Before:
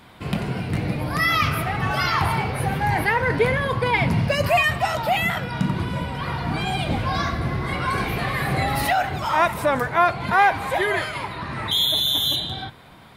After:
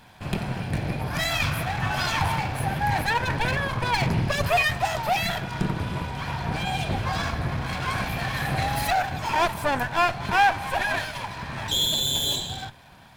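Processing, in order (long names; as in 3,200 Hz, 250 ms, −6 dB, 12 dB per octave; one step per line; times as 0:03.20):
lower of the sound and its delayed copy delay 1.2 ms
level −2 dB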